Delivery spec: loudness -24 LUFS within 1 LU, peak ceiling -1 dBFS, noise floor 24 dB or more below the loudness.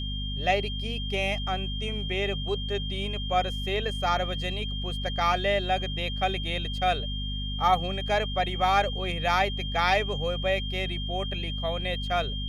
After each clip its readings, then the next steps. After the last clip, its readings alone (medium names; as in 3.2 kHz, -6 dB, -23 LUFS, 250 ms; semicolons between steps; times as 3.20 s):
hum 50 Hz; highest harmonic 250 Hz; hum level -30 dBFS; steady tone 3.2 kHz; tone level -35 dBFS; loudness -27.5 LUFS; peak level -10.5 dBFS; loudness target -24.0 LUFS
-> de-hum 50 Hz, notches 5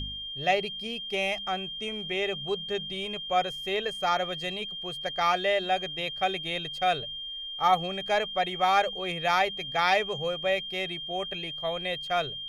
hum not found; steady tone 3.2 kHz; tone level -35 dBFS
-> band-stop 3.2 kHz, Q 30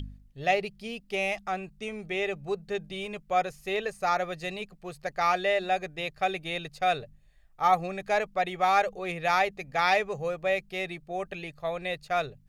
steady tone not found; loudness -29.5 LUFS; peak level -11.0 dBFS; loudness target -24.0 LUFS
-> trim +5.5 dB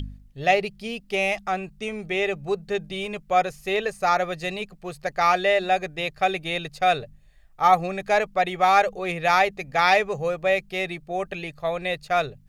loudness -24.0 LUFS; peak level -5.5 dBFS; noise floor -53 dBFS